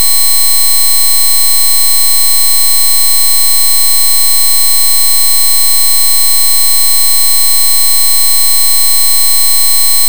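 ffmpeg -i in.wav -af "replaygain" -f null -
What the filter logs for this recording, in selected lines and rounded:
track_gain = -5.8 dB
track_peak = 0.567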